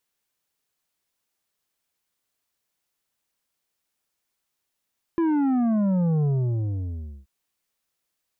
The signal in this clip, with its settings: sub drop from 340 Hz, over 2.08 s, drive 8 dB, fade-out 1.02 s, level -20 dB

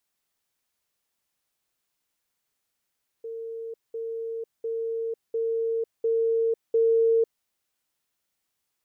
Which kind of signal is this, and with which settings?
level ladder 455 Hz -32.5 dBFS, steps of 3 dB, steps 6, 0.50 s 0.20 s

